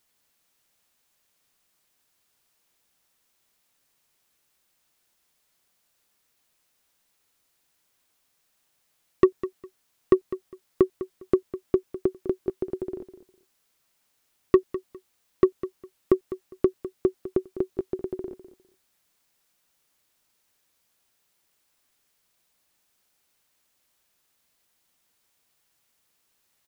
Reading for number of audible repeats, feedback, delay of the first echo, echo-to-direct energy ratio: 2, 21%, 203 ms, −14.0 dB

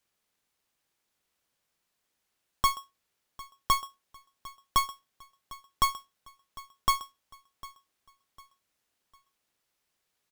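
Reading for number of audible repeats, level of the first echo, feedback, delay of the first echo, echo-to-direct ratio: 2, −20.0 dB, 37%, 752 ms, −19.5 dB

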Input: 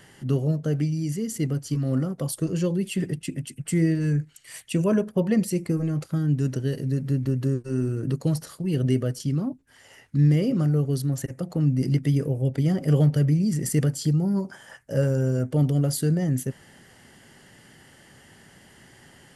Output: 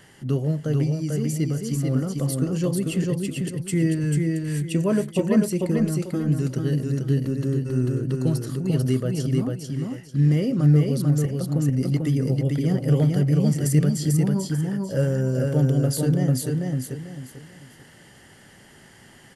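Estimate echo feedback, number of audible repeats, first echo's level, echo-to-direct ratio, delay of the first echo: 29%, 3, −3.0 dB, −2.5 dB, 443 ms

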